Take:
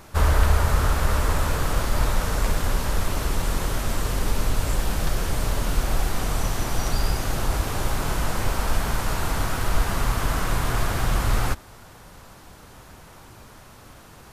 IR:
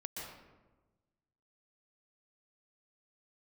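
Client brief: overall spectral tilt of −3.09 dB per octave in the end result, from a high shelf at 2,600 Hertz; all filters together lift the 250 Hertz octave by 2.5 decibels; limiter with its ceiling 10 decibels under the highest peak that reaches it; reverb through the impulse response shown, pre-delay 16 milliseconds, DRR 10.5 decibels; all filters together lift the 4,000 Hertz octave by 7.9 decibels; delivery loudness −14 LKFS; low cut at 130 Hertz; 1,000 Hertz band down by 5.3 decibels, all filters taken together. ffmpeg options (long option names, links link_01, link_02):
-filter_complex "[0:a]highpass=130,equalizer=frequency=250:width_type=o:gain=4.5,equalizer=frequency=1000:width_type=o:gain=-8.5,highshelf=frequency=2600:gain=4.5,equalizer=frequency=4000:width_type=o:gain=6.5,alimiter=limit=-22dB:level=0:latency=1,asplit=2[link_01][link_02];[1:a]atrim=start_sample=2205,adelay=16[link_03];[link_02][link_03]afir=irnorm=-1:irlink=0,volume=-10dB[link_04];[link_01][link_04]amix=inputs=2:normalize=0,volume=15.5dB"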